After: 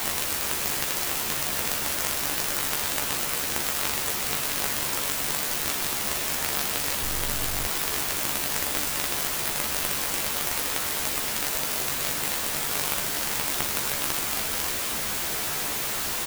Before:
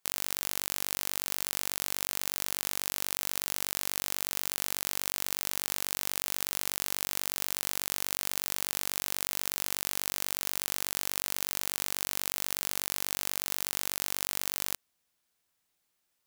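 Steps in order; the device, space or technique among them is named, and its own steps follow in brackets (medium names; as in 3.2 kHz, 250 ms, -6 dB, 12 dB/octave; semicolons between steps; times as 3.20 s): 7.01–7.66 s: bass shelf 120 Hz +2.5 dB; early CD player with a faulty converter (jump at every zero crossing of -22 dBFS; sampling jitter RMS 0.066 ms); doubling 14 ms -4.5 dB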